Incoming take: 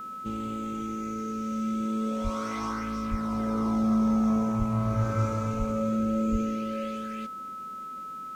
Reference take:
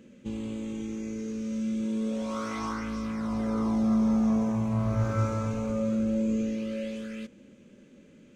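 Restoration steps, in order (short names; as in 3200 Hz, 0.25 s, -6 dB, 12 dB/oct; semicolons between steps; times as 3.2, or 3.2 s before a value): de-hum 408.9 Hz, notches 40; notch 1300 Hz, Q 30; de-plosive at 2.23/3.1/4.58/5.58/6.31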